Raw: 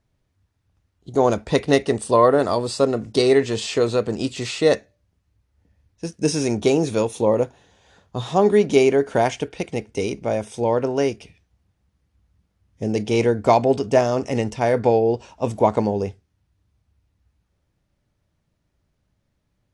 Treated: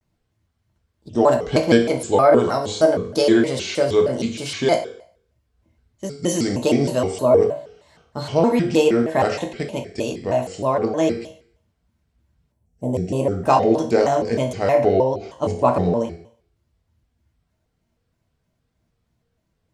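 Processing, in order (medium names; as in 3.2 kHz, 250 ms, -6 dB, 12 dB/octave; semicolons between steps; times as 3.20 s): time-frequency box 12.51–13.32 s, 950–6400 Hz -13 dB; reverberation RT60 0.55 s, pre-delay 3 ms, DRR 1.5 dB; vibrato with a chosen wave square 3.2 Hz, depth 250 cents; trim -2 dB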